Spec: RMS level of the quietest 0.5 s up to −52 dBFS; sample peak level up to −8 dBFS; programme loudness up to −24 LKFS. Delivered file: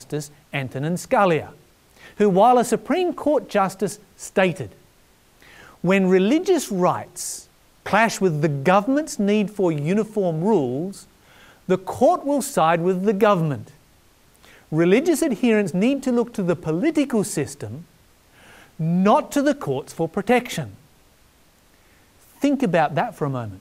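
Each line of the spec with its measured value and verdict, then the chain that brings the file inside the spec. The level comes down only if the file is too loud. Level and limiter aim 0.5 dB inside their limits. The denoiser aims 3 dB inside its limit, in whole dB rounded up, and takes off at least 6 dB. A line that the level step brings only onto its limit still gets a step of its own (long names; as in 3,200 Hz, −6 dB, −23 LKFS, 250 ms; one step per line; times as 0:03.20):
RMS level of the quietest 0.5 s −56 dBFS: in spec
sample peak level −4.0 dBFS: out of spec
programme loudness −21.0 LKFS: out of spec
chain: level −3.5 dB
brickwall limiter −8.5 dBFS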